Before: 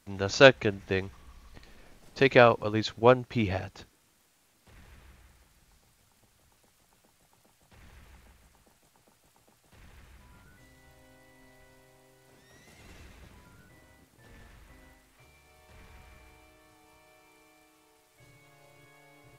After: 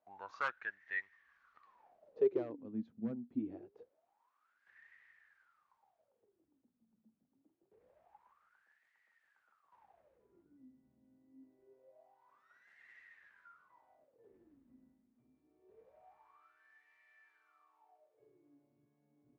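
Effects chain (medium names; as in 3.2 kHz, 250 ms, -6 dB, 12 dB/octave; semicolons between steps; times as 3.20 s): one-sided wavefolder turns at -13.5 dBFS; in parallel at -1 dB: compression, threshold -45 dBFS, peak gain reduction 29 dB; on the sum: wah-wah 0.25 Hz 220–1900 Hz, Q 16; trim +2.5 dB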